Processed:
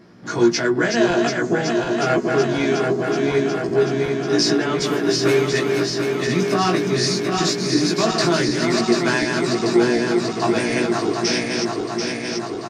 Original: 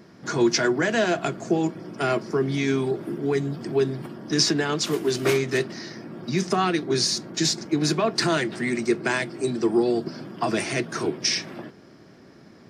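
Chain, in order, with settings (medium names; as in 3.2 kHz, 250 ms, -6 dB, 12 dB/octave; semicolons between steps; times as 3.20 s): backward echo that repeats 369 ms, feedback 84%, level -4.5 dB; treble shelf 7.1 kHz -6.5 dB; doubling 17 ms -2 dB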